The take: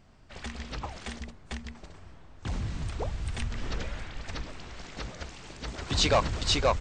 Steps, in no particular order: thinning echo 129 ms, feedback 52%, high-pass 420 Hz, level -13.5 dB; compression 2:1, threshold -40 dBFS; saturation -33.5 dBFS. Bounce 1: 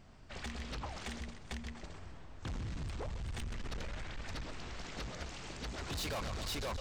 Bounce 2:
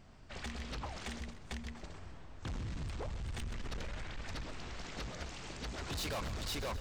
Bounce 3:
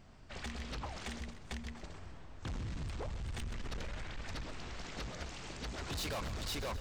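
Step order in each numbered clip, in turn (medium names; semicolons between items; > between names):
thinning echo > saturation > compression; saturation > compression > thinning echo; saturation > thinning echo > compression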